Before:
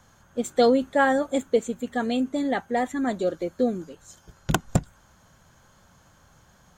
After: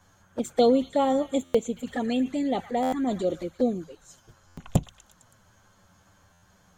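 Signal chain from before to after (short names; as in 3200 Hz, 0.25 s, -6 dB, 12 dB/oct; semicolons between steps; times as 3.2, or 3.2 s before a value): envelope flanger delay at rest 11.4 ms, full sweep at -21.5 dBFS; delay with a stepping band-pass 0.114 s, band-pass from 1600 Hz, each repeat 0.7 oct, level -10 dB; 1.74–3.47 transient shaper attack 0 dB, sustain +5 dB; stuck buffer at 1.44/2.82/4.47/6.32, samples 512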